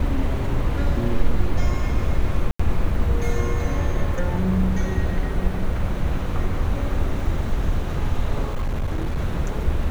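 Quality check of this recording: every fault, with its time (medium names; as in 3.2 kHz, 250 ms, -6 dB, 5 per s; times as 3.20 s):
2.51–2.60 s: dropout 85 ms
8.44–9.20 s: clipped -19.5 dBFS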